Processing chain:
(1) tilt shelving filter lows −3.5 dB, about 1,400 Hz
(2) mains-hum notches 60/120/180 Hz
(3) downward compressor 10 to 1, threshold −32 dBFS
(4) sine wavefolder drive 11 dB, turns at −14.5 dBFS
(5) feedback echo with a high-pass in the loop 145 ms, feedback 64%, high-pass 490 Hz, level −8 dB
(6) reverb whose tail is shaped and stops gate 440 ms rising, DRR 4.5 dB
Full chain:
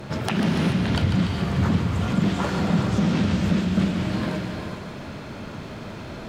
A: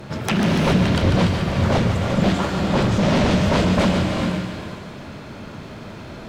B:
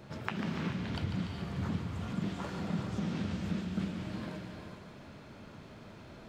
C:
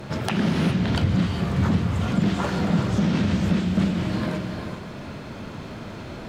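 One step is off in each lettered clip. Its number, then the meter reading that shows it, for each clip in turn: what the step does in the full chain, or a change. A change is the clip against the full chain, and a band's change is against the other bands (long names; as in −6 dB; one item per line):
3, average gain reduction 4.0 dB
4, distortion level −16 dB
5, echo-to-direct ratio −2.0 dB to −4.5 dB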